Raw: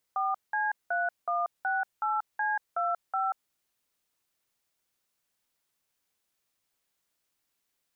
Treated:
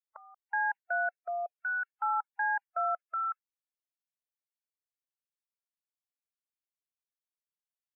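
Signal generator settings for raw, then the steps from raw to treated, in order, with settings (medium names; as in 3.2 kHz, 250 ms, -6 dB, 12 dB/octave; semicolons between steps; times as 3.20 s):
DTMF "4C3168C25", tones 185 ms, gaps 187 ms, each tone -28.5 dBFS
spectral noise reduction 25 dB; high-pass 580 Hz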